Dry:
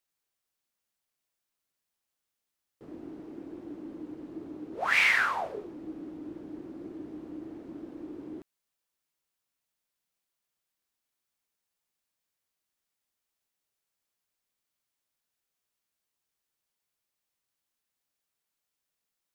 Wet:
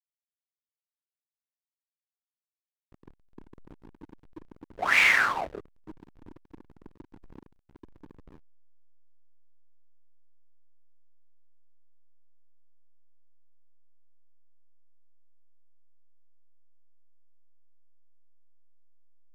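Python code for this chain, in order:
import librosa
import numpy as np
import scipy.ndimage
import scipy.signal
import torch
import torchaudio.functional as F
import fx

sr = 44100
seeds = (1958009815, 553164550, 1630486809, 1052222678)

y = fx.backlash(x, sr, play_db=-30.0)
y = F.gain(torch.from_numpy(y), 3.5).numpy()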